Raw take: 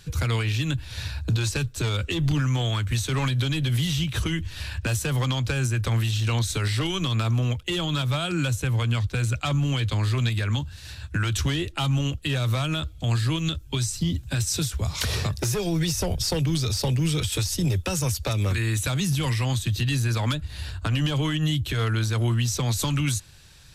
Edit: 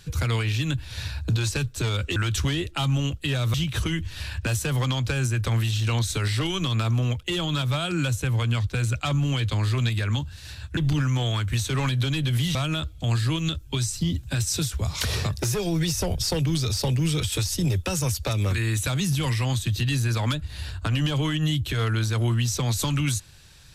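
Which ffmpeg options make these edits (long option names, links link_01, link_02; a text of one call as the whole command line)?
ffmpeg -i in.wav -filter_complex "[0:a]asplit=5[link_01][link_02][link_03][link_04][link_05];[link_01]atrim=end=2.162[link_06];[link_02]atrim=start=11.168:end=12.552[link_07];[link_03]atrim=start=3.938:end=11.172[link_08];[link_04]atrim=start=2.158:end=3.942[link_09];[link_05]atrim=start=12.548[link_10];[link_06][link_07]acrossfade=duration=0.004:curve1=hsin:curve2=hsin[link_11];[link_11][link_08]acrossfade=duration=0.004:curve1=hsin:curve2=hsin[link_12];[link_12][link_09]acrossfade=duration=0.004:curve1=hsin:curve2=hsin[link_13];[link_13][link_10]acrossfade=duration=0.004:curve1=hsin:curve2=hsin" out.wav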